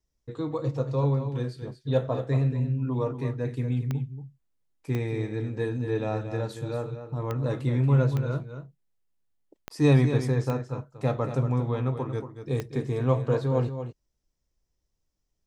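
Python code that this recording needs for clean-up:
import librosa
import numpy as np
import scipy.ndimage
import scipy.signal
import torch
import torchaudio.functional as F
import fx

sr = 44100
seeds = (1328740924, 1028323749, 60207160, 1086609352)

y = fx.fix_declick_ar(x, sr, threshold=10.0)
y = fx.fix_echo_inverse(y, sr, delay_ms=231, level_db=-9.5)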